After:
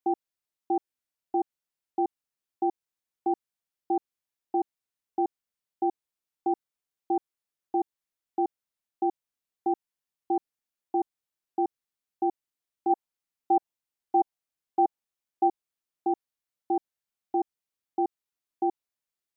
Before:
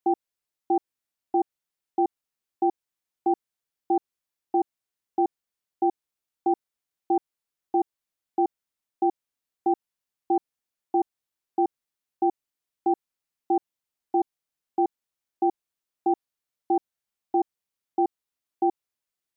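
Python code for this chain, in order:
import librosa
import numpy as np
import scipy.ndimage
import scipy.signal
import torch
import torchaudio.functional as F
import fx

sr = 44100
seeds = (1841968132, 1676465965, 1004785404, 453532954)

y = fx.dynamic_eq(x, sr, hz=780.0, q=1.9, threshold_db=-38.0, ratio=4.0, max_db=6, at=(12.89, 15.47), fade=0.02)
y = y * librosa.db_to_amplitude(-3.5)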